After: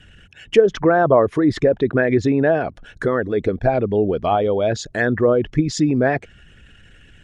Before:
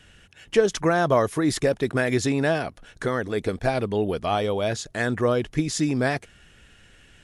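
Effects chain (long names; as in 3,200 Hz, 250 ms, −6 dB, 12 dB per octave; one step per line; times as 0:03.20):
spectral envelope exaggerated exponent 1.5
treble cut that deepens with the level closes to 2,200 Hz, closed at −18 dBFS
level +6 dB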